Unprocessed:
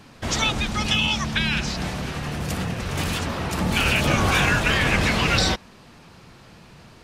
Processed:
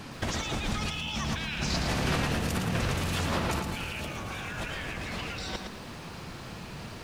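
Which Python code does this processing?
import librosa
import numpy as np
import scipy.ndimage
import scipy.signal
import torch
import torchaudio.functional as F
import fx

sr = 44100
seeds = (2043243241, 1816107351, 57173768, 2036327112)

y = fx.over_compress(x, sr, threshold_db=-31.0, ratio=-1.0)
y = fx.echo_crushed(y, sr, ms=112, feedback_pct=35, bits=9, wet_db=-6.0)
y = y * librosa.db_to_amplitude(-2.0)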